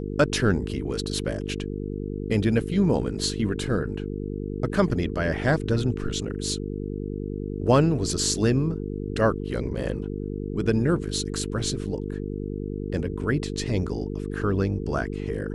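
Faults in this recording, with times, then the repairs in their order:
mains buzz 50 Hz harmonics 9 −31 dBFS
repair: hum removal 50 Hz, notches 9

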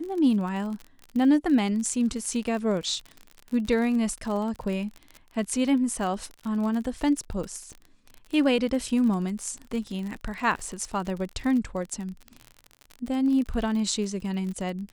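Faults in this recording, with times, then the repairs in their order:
surface crackle 39 per second −32 dBFS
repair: click removal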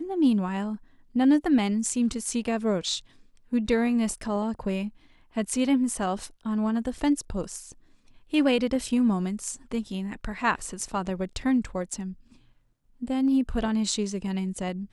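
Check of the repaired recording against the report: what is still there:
none of them is left

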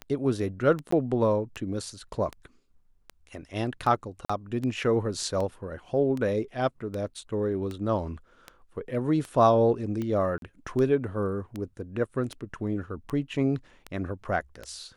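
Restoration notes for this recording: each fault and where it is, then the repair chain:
scratch tick 78 rpm −21 dBFS
0:00.91–0:00.92: drop-out 14 ms
0:04.25–0:04.29: drop-out 45 ms
0:10.38–0:10.42: drop-out 42 ms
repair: click removal
repair the gap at 0:00.91, 14 ms
repair the gap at 0:04.25, 45 ms
repair the gap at 0:10.38, 42 ms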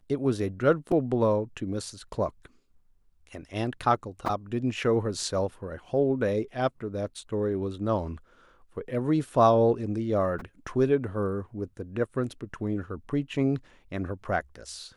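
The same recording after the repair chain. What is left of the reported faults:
none of them is left

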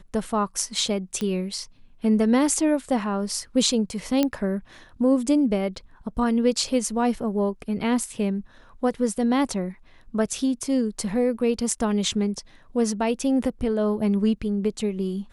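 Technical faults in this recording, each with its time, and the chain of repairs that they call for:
0:01.21: click −16 dBFS
0:04.23: click −8 dBFS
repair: click removal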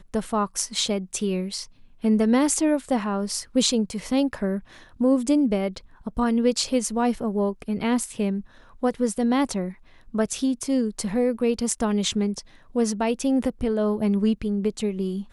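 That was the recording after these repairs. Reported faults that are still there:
none of them is left

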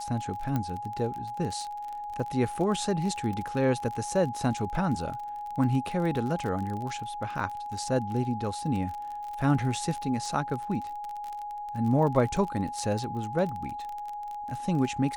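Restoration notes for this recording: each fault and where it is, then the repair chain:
surface crackle 33 per second −33 dBFS
whistle 830 Hz −34 dBFS
0:00.56: click −17 dBFS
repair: click removal
notch filter 830 Hz, Q 30

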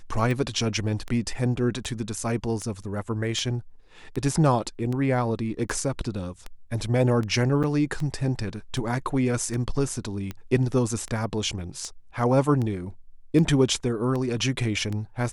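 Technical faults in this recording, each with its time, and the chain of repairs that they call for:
scratch tick 78 rpm
0:07.63–0:07.64: drop-out 7.1 ms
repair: click removal
repair the gap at 0:07.63, 7.1 ms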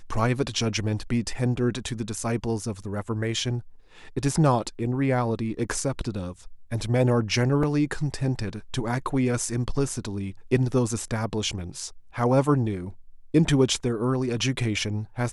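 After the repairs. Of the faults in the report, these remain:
none of them is left

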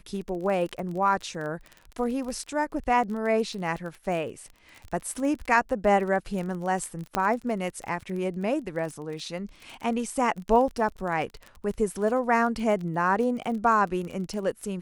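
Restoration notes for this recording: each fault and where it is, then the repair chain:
surface crackle 30 per second −33 dBFS
0:07.15: click −11 dBFS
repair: click removal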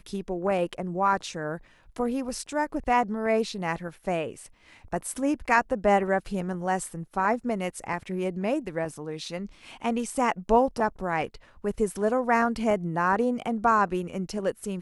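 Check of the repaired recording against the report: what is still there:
none of them is left

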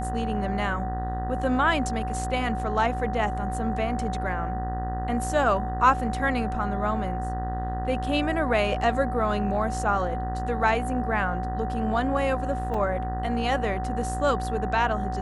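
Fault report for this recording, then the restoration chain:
mains buzz 60 Hz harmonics 32 −31 dBFS
whistle 750 Hz −31 dBFS
0:12.74: drop-out 3.5 ms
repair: hum removal 60 Hz, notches 32
notch filter 750 Hz, Q 30
repair the gap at 0:12.74, 3.5 ms

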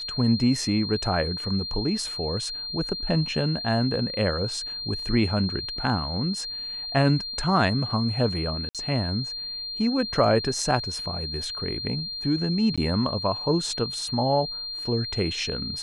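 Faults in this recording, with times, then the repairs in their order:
whistle 4,200 Hz −31 dBFS
0:08.69–0:08.75: drop-out 57 ms
0:12.76–0:12.78: drop-out 16 ms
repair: notch filter 4,200 Hz, Q 30
repair the gap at 0:08.69, 57 ms
repair the gap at 0:12.76, 16 ms

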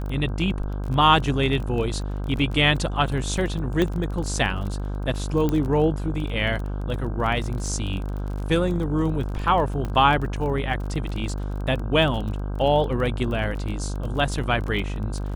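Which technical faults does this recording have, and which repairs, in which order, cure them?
mains buzz 50 Hz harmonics 32 −28 dBFS
surface crackle 24 per second −30 dBFS
0:03.82: click −11 dBFS
0:05.49: click −12 dBFS
0:09.85: click −18 dBFS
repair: click removal
hum removal 50 Hz, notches 32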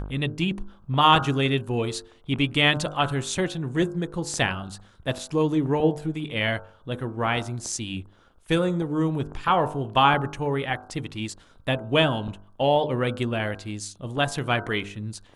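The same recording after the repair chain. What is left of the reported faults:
0:09.85: click

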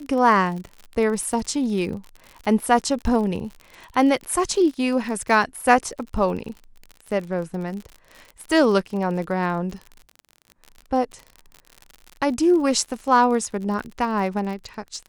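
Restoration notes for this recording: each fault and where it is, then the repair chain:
surface crackle 51 per second −30 dBFS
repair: click removal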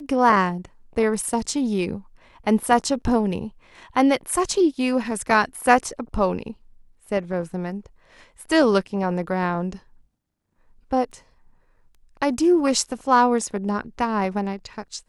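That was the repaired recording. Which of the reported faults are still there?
none of them is left

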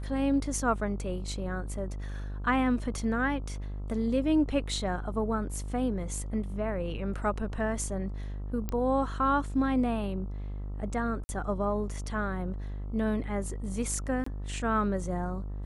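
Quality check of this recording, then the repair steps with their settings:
mains buzz 50 Hz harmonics 27 −36 dBFS
0:08.69: click −19 dBFS
0:11.24–0:11.29: drop-out 50 ms
0:14.24–0:14.26: drop-out 24 ms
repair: click removal
hum removal 50 Hz, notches 27
repair the gap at 0:11.24, 50 ms
repair the gap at 0:14.24, 24 ms

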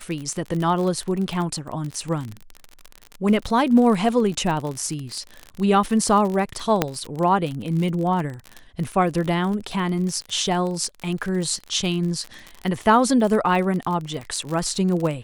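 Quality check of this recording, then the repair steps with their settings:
surface crackle 44 per second −26 dBFS
0:06.82: click −3 dBFS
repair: click removal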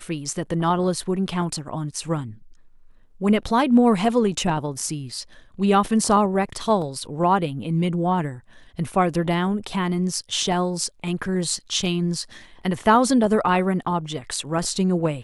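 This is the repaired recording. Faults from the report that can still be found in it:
0:06.82: click

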